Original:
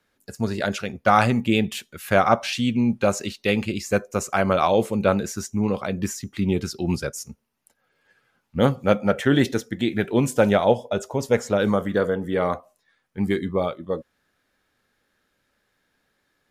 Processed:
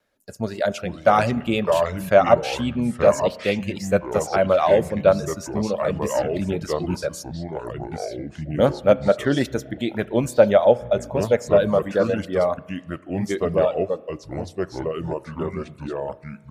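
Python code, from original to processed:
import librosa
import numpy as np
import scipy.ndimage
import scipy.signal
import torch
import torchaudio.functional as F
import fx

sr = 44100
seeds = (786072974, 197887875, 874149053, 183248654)

y = fx.wow_flutter(x, sr, seeds[0], rate_hz=2.1, depth_cents=24.0)
y = fx.echo_pitch(y, sr, ms=330, semitones=-4, count=2, db_per_echo=-6.0)
y = fx.dereverb_blind(y, sr, rt60_s=0.52)
y = fx.peak_eq(y, sr, hz=600.0, db=10.5, octaves=0.43)
y = fx.rev_spring(y, sr, rt60_s=1.3, pass_ms=(33,), chirp_ms=75, drr_db=18.5)
y = y * 10.0 ** (-2.5 / 20.0)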